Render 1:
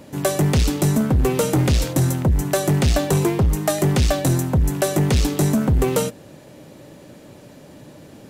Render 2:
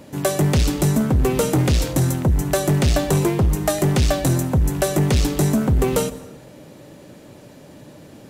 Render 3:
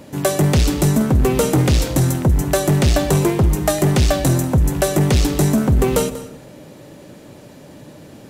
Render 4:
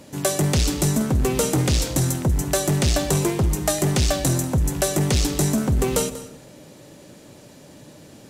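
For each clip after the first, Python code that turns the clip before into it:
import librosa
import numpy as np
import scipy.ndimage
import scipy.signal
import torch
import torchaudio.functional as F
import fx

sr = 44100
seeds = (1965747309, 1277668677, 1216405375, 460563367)

y1 = fx.rev_plate(x, sr, seeds[0], rt60_s=1.3, hf_ratio=0.55, predelay_ms=115, drr_db=17.5)
y2 = y1 + 10.0 ** (-17.0 / 20.0) * np.pad(y1, (int(190 * sr / 1000.0), 0))[:len(y1)]
y2 = y2 * 10.0 ** (2.5 / 20.0)
y3 = fx.peak_eq(y2, sr, hz=6900.0, db=7.0, octaves=2.0)
y3 = y3 * 10.0 ** (-5.5 / 20.0)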